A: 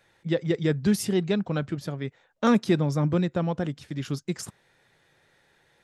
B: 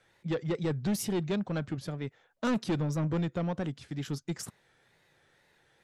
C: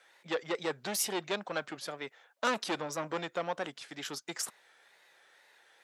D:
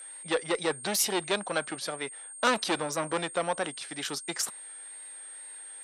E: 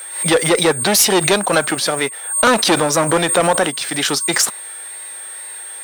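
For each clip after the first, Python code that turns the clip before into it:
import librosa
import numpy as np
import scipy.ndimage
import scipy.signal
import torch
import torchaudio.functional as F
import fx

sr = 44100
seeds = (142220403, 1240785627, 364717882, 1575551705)

y1 = fx.wow_flutter(x, sr, seeds[0], rate_hz=2.1, depth_cents=91.0)
y1 = 10.0 ** (-21.5 / 20.0) * np.tanh(y1 / 10.0 ** (-21.5 / 20.0))
y1 = F.gain(torch.from_numpy(y1), -3.0).numpy()
y2 = scipy.signal.sosfilt(scipy.signal.butter(2, 630.0, 'highpass', fs=sr, output='sos'), y1)
y2 = F.gain(torch.from_numpy(y2), 5.5).numpy()
y3 = y2 + 10.0 ** (-47.0 / 20.0) * np.sin(2.0 * np.pi * 8600.0 * np.arange(len(y2)) / sr)
y3 = fx.cheby_harmonics(y3, sr, harmonics=(2,), levels_db=(-26,), full_scale_db=-15.0)
y3 = fx.peak_eq(y3, sr, hz=4000.0, db=2.5, octaves=0.37)
y3 = F.gain(torch.from_numpy(y3), 5.0).numpy()
y4 = fx.leveller(y3, sr, passes=3)
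y4 = fx.pre_swell(y4, sr, db_per_s=89.0)
y4 = F.gain(torch.from_numpy(y4), 5.0).numpy()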